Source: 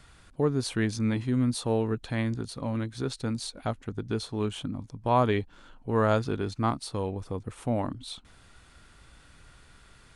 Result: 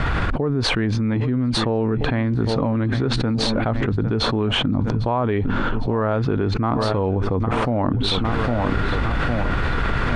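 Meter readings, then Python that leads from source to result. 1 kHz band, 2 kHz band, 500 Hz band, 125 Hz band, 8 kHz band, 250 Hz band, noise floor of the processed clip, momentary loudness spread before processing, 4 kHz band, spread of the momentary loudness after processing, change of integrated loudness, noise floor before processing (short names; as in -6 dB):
+7.5 dB, +13.0 dB, +7.5 dB, +10.5 dB, +2.5 dB, +9.0 dB, -22 dBFS, 11 LU, +14.0 dB, 2 LU, +8.0 dB, -56 dBFS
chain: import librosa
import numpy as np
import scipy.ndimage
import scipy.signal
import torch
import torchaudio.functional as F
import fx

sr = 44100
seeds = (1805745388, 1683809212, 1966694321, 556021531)

p1 = scipy.signal.sosfilt(scipy.signal.butter(2, 2000.0, 'lowpass', fs=sr, output='sos'), x)
p2 = p1 + fx.echo_feedback(p1, sr, ms=806, feedback_pct=44, wet_db=-21.5, dry=0)
y = fx.env_flatten(p2, sr, amount_pct=100)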